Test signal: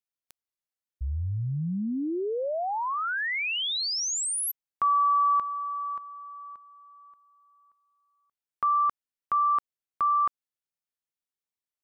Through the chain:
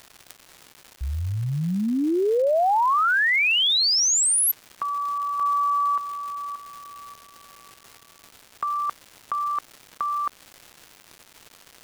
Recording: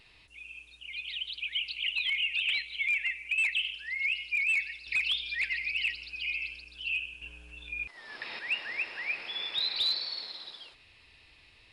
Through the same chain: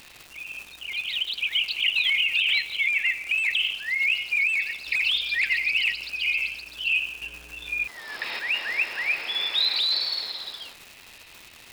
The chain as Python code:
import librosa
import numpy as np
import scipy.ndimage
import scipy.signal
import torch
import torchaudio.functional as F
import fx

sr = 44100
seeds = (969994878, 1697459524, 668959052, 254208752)

y = fx.low_shelf(x, sr, hz=250.0, db=-9.0)
y = fx.over_compress(y, sr, threshold_db=-30.0, ratio=-1.0)
y = fx.dmg_crackle(y, sr, seeds[0], per_s=430.0, level_db=-42.0)
y = y * librosa.db_to_amplitude(8.0)